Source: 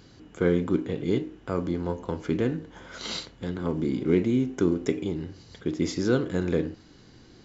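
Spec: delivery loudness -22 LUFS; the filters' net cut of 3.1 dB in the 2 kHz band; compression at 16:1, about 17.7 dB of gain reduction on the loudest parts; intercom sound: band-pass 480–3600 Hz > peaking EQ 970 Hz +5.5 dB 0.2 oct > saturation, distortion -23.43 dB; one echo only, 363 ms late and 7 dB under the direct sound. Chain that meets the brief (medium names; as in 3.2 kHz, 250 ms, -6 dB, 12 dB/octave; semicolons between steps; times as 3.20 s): peaking EQ 2 kHz -4 dB; compression 16:1, threshold -36 dBFS; band-pass 480–3600 Hz; peaking EQ 970 Hz +5.5 dB 0.2 oct; delay 363 ms -7 dB; saturation -31.5 dBFS; trim +26.5 dB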